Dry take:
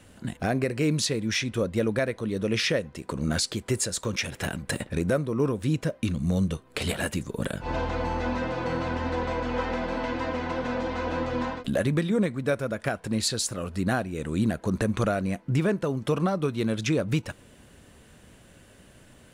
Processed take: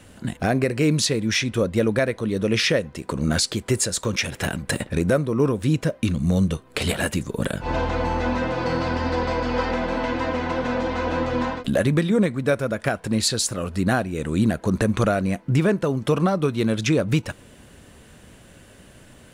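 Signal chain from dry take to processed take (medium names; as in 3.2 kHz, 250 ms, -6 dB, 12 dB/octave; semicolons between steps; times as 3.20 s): 8.59–9.71 s: peaking EQ 4.8 kHz +8.5 dB 0.27 oct; trim +5 dB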